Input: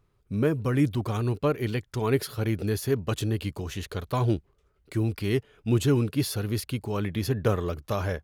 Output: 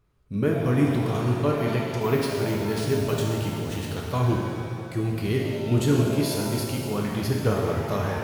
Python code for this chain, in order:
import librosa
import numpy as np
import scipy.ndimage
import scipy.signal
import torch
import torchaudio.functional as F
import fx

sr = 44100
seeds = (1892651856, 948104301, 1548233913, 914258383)

y = fx.resample_bad(x, sr, factor=3, down='none', up='hold', at=(2.01, 3.91))
y = fx.vibrato(y, sr, rate_hz=1.9, depth_cents=12.0)
y = fx.rev_shimmer(y, sr, seeds[0], rt60_s=2.1, semitones=7, shimmer_db=-8, drr_db=-1.5)
y = F.gain(torch.from_numpy(y), -1.5).numpy()